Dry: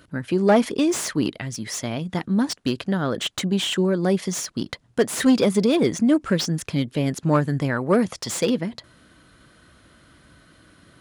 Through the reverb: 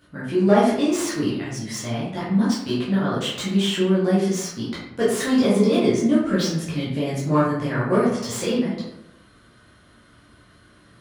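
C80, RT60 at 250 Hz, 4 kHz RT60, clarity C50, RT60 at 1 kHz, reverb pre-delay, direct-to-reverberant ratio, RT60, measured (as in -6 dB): 5.0 dB, 0.90 s, 0.50 s, 1.5 dB, 0.80 s, 9 ms, -9.0 dB, 0.85 s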